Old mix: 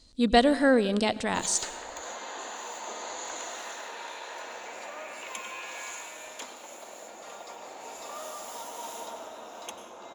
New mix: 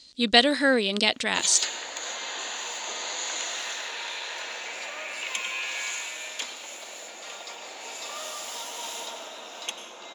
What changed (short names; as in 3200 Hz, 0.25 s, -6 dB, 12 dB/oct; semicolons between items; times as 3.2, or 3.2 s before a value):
speech: send off; master: add weighting filter D